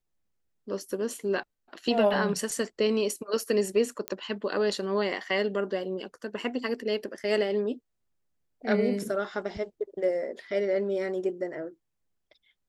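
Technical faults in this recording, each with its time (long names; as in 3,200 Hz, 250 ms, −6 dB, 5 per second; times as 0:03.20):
0:04.08: click −14 dBFS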